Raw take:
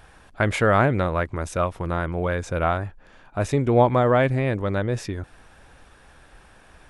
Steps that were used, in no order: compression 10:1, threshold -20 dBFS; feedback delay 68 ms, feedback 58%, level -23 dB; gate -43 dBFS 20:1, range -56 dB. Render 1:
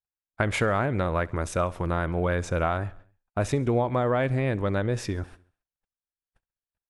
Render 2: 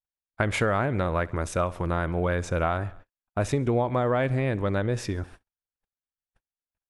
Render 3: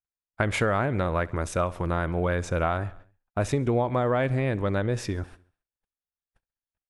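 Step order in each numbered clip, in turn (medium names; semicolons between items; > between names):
compression > gate > feedback delay; feedback delay > compression > gate; gate > feedback delay > compression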